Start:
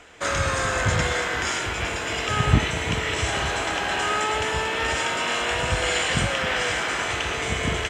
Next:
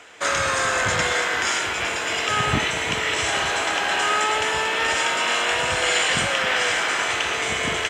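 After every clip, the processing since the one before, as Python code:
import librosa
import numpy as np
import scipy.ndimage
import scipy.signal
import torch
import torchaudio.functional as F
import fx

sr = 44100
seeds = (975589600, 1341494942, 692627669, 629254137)

y = fx.highpass(x, sr, hz=190.0, slope=6)
y = fx.low_shelf(y, sr, hz=430.0, db=-6.0)
y = y * 10.0 ** (4.0 / 20.0)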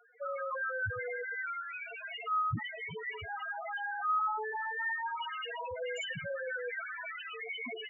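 y = fx.spec_topn(x, sr, count=2)
y = y * 10.0 ** (-4.0 / 20.0)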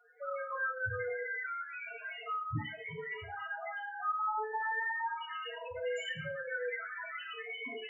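y = x + 10.0 ** (-21.0 / 20.0) * np.pad(x, (int(85 * sr / 1000.0), 0))[:len(x)]
y = fx.rev_fdn(y, sr, rt60_s=0.34, lf_ratio=1.05, hf_ratio=1.0, size_ms=20.0, drr_db=-1.5)
y = y * 10.0 ** (-5.0 / 20.0)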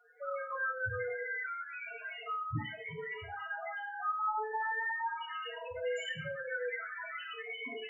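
y = fx.room_flutter(x, sr, wall_m=8.6, rt60_s=0.2)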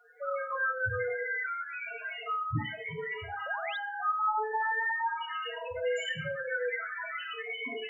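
y = fx.spec_paint(x, sr, seeds[0], shape='rise', start_s=3.46, length_s=0.31, low_hz=520.0, high_hz=4000.0, level_db=-45.0)
y = y * 10.0 ** (4.5 / 20.0)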